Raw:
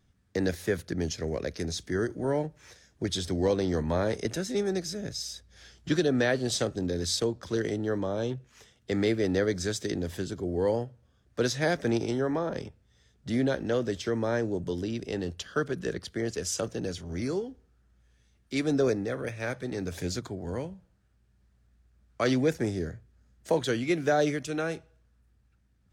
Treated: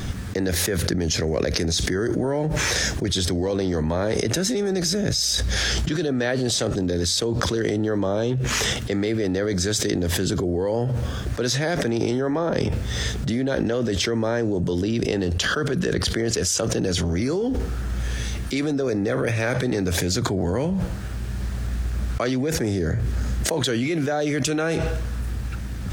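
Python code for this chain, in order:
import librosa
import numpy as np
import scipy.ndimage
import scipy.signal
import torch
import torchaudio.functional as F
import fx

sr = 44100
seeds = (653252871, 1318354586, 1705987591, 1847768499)

y = fx.env_flatten(x, sr, amount_pct=100)
y = F.gain(torch.from_numpy(y), -1.5).numpy()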